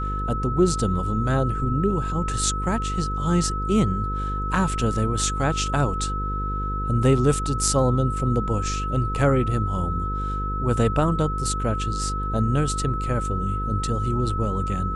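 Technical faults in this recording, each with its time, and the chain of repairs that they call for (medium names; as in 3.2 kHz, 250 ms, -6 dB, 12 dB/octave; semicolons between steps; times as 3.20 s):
buzz 50 Hz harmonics 10 -28 dBFS
whine 1.3 kHz -28 dBFS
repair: band-stop 1.3 kHz, Q 30; de-hum 50 Hz, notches 10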